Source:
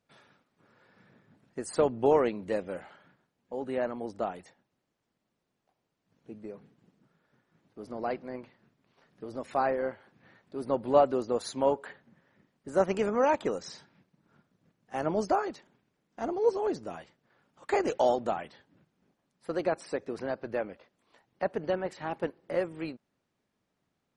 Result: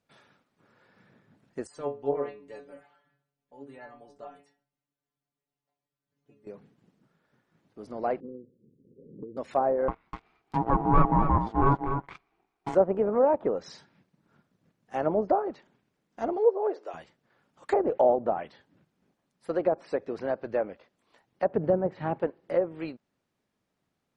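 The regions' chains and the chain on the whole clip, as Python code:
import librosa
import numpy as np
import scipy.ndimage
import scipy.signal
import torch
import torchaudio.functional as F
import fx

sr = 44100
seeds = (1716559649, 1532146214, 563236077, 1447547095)

y = fx.chain(x, sr, fx.stiff_resonator(f0_hz=140.0, decay_s=0.29, stiffness=0.002),
    fx.echo_feedback(ms=66, feedback_pct=40, wet_db=-22.0), at=(1.67, 6.47))
y = fx.chain(y, sr, fx.steep_lowpass(hz=510.0, slope=96),
    fx.low_shelf(hz=100.0, db=-10.0),
    fx.band_squash(depth_pct=100), at=(8.2, 9.37))
y = fx.chain(y, sr, fx.ring_mod(carrier_hz=560.0),
    fx.leveller(passes=3),
    fx.echo_single(ms=249, db=-7.5), at=(9.88, 12.75))
y = fx.chain(y, sr, fx.steep_highpass(hz=380.0, slope=36),
    fx.high_shelf(hz=9000.0, db=-8.5), at=(16.37, 16.94))
y = fx.chain(y, sr, fx.peak_eq(hz=130.0, db=11.0, octaves=1.9),
    fx.resample_linear(factor=2), at=(21.49, 22.19))
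y = fx.env_lowpass_down(y, sr, base_hz=860.0, full_db=-24.0)
y = fx.dynamic_eq(y, sr, hz=580.0, q=1.0, threshold_db=-38.0, ratio=4.0, max_db=5)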